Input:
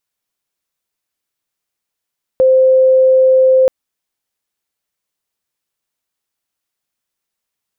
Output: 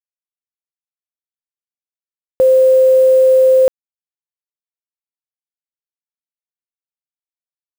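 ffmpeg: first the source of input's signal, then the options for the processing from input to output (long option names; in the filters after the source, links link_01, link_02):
-f lavfi -i "sine=frequency=521:duration=1.28:sample_rate=44100,volume=12.06dB"
-af "acrusher=bits=6:dc=4:mix=0:aa=0.000001"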